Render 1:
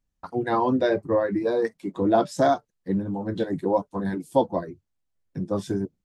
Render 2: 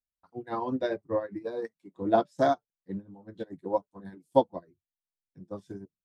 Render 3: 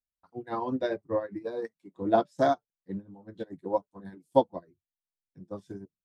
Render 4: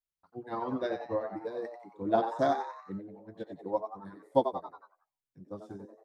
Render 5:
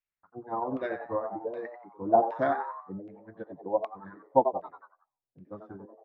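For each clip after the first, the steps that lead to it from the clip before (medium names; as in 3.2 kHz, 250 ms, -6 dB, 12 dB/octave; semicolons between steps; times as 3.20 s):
upward expansion 2.5:1, over -31 dBFS
no audible change
frequency-shifting echo 91 ms, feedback 46%, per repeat +120 Hz, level -8.5 dB; trim -3.5 dB
LFO low-pass saw down 1.3 Hz 610–2600 Hz; wow and flutter 24 cents; trim -1 dB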